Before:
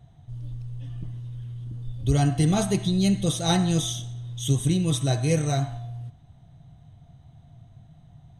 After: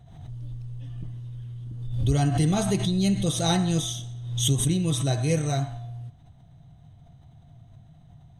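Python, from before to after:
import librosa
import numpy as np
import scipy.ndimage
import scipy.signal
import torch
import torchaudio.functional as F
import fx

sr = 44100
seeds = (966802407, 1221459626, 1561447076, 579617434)

y = fx.pre_swell(x, sr, db_per_s=59.0)
y = y * 10.0 ** (-1.5 / 20.0)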